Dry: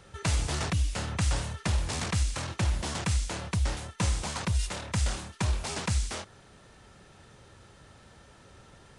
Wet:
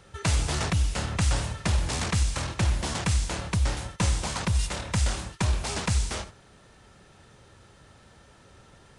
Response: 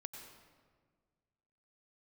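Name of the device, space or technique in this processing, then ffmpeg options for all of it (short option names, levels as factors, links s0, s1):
keyed gated reverb: -filter_complex "[0:a]asplit=3[s0][s1][s2];[1:a]atrim=start_sample=2205[s3];[s1][s3]afir=irnorm=-1:irlink=0[s4];[s2]apad=whole_len=396111[s5];[s4][s5]sidechaingate=range=0.0224:threshold=0.00562:ratio=16:detection=peak,volume=0.75[s6];[s0][s6]amix=inputs=2:normalize=0"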